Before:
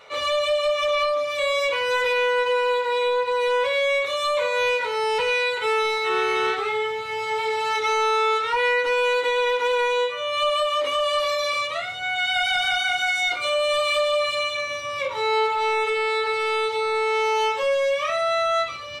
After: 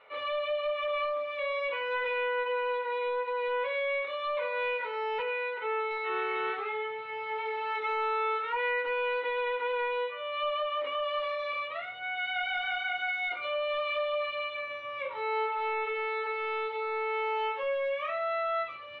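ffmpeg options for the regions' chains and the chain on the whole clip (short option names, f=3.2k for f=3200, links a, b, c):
-filter_complex "[0:a]asettb=1/sr,asplit=3[a][b][c];[a]atrim=end=5.224[d];[b]atrim=start=5.22:end=5.91,asetpts=PTS-STARTPTS,afade=t=in:d=0.004:c=qsin,afade=t=out:st=0.686:d=0.004:c=qsin,highpass=f=110:p=1,aemphasis=mode=reproduction:type=75fm[e];[c]atrim=start=5.906[f];[d][e]acrossfade=d=0.004:c1=hsin:c2=qsin[g];[g][f]acrossfade=d=0.004:c1=qsin:c2=hsin,lowpass=f=2.8k:w=0.5412,lowpass=f=2.8k:w=1.3066,equalizer=f=74:t=o:w=2.9:g=-11,volume=-8dB"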